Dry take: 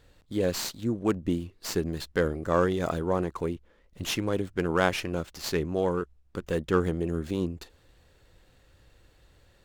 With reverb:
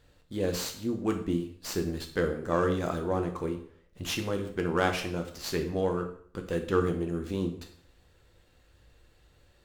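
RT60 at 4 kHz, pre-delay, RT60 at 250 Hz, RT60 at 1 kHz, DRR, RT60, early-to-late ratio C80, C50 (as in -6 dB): 0.50 s, 4 ms, 0.60 s, 0.55 s, 4.0 dB, 0.55 s, 13.0 dB, 9.5 dB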